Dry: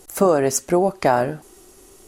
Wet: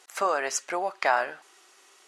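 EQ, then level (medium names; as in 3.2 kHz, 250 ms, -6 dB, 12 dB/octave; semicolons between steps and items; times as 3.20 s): high-pass 1.5 kHz 12 dB/octave; tape spacing loss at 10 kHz 21 dB; +7.5 dB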